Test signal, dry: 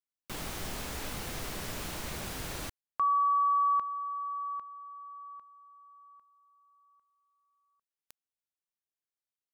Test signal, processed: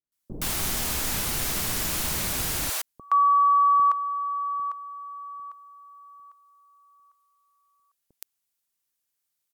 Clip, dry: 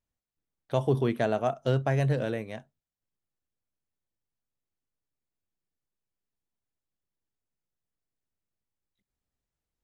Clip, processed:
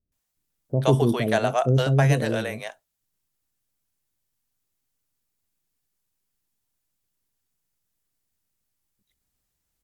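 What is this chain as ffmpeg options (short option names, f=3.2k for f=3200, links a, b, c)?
-filter_complex "[0:a]aemphasis=mode=production:type=cd,acrossover=split=490[a][b];[b]adelay=120[c];[a][c]amix=inputs=2:normalize=0,volume=7.5dB"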